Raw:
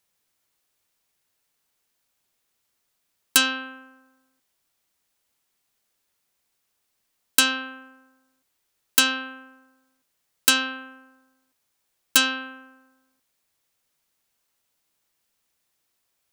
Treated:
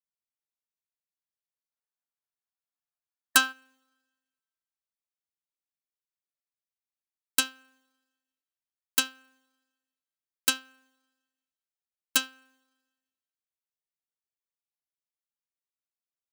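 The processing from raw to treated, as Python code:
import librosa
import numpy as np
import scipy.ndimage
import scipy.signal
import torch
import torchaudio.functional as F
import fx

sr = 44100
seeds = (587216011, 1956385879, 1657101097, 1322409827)

y = fx.spec_box(x, sr, start_s=1.7, length_s=1.82, low_hz=640.0, high_hz=1800.0, gain_db=7)
y = fx.rev_schroeder(y, sr, rt60_s=1.6, comb_ms=29, drr_db=17.5)
y = fx.upward_expand(y, sr, threshold_db=-28.0, expansion=2.5)
y = y * 10.0 ** (-2.5 / 20.0)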